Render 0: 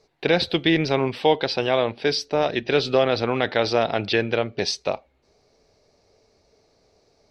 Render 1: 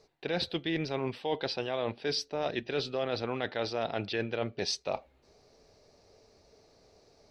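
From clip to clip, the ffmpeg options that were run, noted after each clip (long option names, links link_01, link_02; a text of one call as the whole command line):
ffmpeg -i in.wav -af "bandreject=frequency=2200:width=27,areverse,acompressor=threshold=-30dB:ratio=5,areverse" out.wav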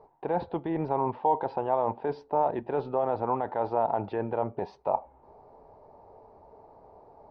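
ffmpeg -i in.wav -af "alimiter=level_in=1dB:limit=-24dB:level=0:latency=1:release=121,volume=-1dB,lowpass=frequency=910:width_type=q:width=6.8,volume=4.5dB" out.wav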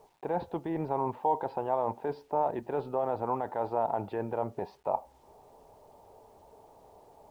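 ffmpeg -i in.wav -af "acrusher=bits=10:mix=0:aa=0.000001,volume=-3dB" out.wav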